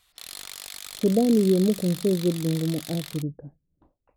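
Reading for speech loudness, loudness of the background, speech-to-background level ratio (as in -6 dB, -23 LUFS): -24.0 LUFS, -37.5 LUFS, 13.5 dB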